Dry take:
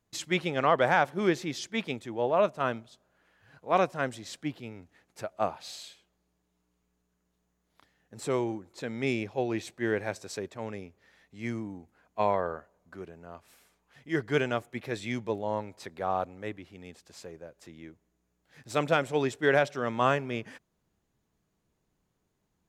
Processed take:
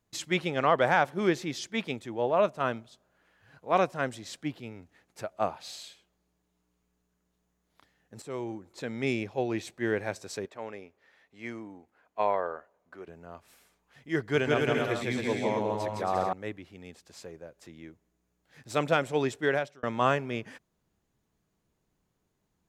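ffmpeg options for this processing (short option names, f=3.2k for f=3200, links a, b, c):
-filter_complex "[0:a]asettb=1/sr,asplit=3[a][b][c];[a]atrim=end=10.454[d];[b]atrim=start=10.45:end=13.08,asetpts=PTS-STARTPTS,afade=t=in:d=0.004:c=qsin,afade=t=out:st=2.626:d=0.004:c=qsin,bass=f=250:g=-13,treble=f=4k:g=-7[e];[c]atrim=start=13.076[f];[d][e]acrossfade=d=0.004:c1=hsin:c2=qsin[g];[g][f]acrossfade=d=0.004:c1=qsin:c2=hsin,asettb=1/sr,asplit=3[h][i][j];[h]atrim=end=14.204[k];[i]atrim=start=14.2:end=16.33,asetpts=PTS-STARTPTS,afade=t=in:d=0.004:c=qsin,afade=t=out:st=2.126:d=0.004:c=qsin,aecho=1:1:160|272|350.4|405.3|443.7:0.794|0.631|0.501|0.398|0.316,atrim=end_sample=93933[l];[j]atrim=start=16.326[m];[k][l]acrossfade=d=0.004:c1=hsin:c2=qsin[n];[n][m]acrossfade=d=0.004:c1=qsin:c2=hsin,asplit=3[o][p][q];[o]atrim=end=8.22,asetpts=PTS-STARTPTS,afade=t=out:st=8.216:d=0.004:c=hsin:silence=0.211349[r];[p]atrim=start=8.22:end=19.83,asetpts=PTS-STARTPTS,afade=t=in:d=0.5:silence=0.211349,afade=t=out:st=11.15:d=0.46[s];[q]atrim=start=19.83,asetpts=PTS-STARTPTS,afade=t=in:d=0.004:c=hsin[t];[r][s][t]concat=n=3:v=0:a=1"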